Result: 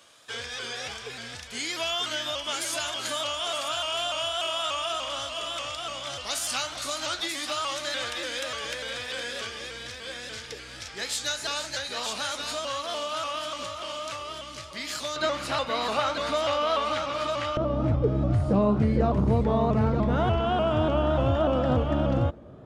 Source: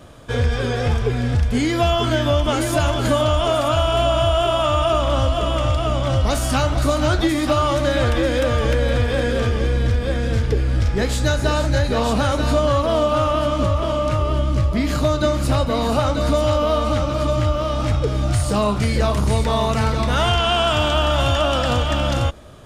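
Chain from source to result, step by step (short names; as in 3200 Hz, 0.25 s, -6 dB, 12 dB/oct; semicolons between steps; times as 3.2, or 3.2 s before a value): band-pass 5600 Hz, Q 0.64, from 15.16 s 2300 Hz, from 17.57 s 260 Hz; shaped vibrato saw up 3.4 Hz, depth 100 cents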